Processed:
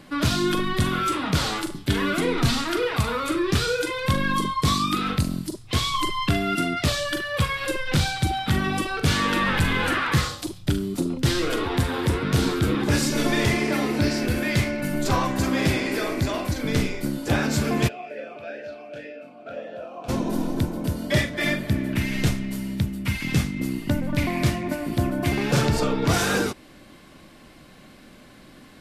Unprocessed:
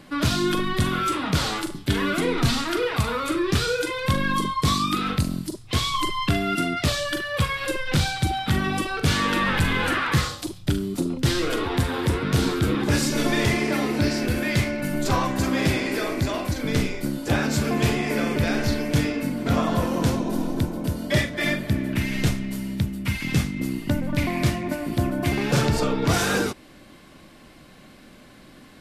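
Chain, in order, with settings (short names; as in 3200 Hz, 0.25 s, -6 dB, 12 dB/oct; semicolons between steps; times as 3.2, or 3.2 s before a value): 17.87–20.08 vowel sweep a-e 3 Hz -> 1.3 Hz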